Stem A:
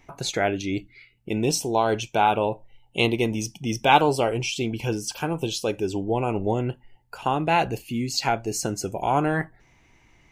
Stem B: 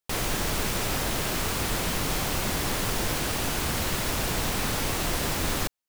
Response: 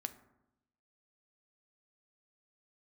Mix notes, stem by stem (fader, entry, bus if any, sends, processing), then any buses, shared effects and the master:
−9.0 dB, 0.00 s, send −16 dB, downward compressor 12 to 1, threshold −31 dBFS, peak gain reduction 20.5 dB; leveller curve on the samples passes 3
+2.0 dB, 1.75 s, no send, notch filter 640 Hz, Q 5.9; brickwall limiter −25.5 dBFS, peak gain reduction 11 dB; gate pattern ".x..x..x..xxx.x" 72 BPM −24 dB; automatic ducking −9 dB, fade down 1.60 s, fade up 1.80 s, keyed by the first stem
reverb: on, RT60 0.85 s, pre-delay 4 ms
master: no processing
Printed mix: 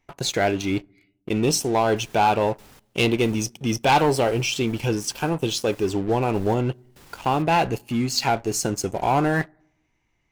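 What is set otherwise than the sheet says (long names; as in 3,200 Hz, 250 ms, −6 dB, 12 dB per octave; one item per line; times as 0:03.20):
stem A: missing downward compressor 12 to 1, threshold −31 dBFS, peak gain reduction 20.5 dB
stem B +2.0 dB → −6.0 dB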